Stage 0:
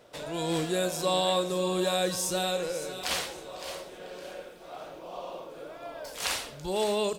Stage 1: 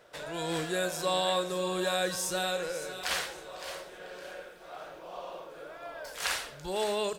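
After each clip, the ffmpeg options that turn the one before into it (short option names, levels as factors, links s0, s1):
-af "equalizer=f=100:t=o:w=0.67:g=-5,equalizer=f=250:t=o:w=0.67:g=-6,equalizer=f=1600:t=o:w=0.67:g=7,volume=0.75"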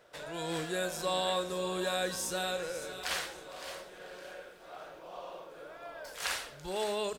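-filter_complex "[0:a]asplit=4[s0][s1][s2][s3];[s1]adelay=455,afreqshift=-120,volume=0.106[s4];[s2]adelay=910,afreqshift=-240,volume=0.0372[s5];[s3]adelay=1365,afreqshift=-360,volume=0.013[s6];[s0][s4][s5][s6]amix=inputs=4:normalize=0,volume=0.708"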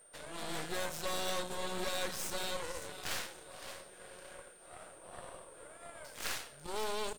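-af "aeval=exprs='val(0)+0.00251*sin(2*PI*8800*n/s)':c=same,aeval=exprs='0.119*(cos(1*acos(clip(val(0)/0.119,-1,1)))-cos(1*PI/2))+0.0266*(cos(6*acos(clip(val(0)/0.119,-1,1)))-cos(6*PI/2))+0.0473*(cos(8*acos(clip(val(0)/0.119,-1,1)))-cos(8*PI/2))':c=same,volume=0.473"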